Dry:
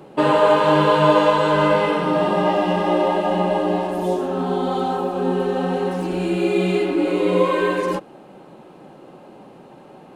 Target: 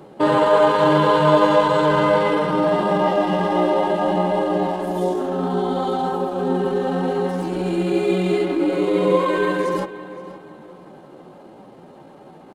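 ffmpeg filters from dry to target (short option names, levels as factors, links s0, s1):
-filter_complex "[0:a]equalizer=f=2600:w=7.8:g=-7.5,atempo=0.81,asplit=2[s0][s1];[s1]adelay=520,lowpass=f=4100:p=1,volume=0.178,asplit=2[s2][s3];[s3]adelay=520,lowpass=f=4100:p=1,volume=0.32,asplit=2[s4][s5];[s5]adelay=520,lowpass=f=4100:p=1,volume=0.32[s6];[s2][s4][s6]amix=inputs=3:normalize=0[s7];[s0][s7]amix=inputs=2:normalize=0"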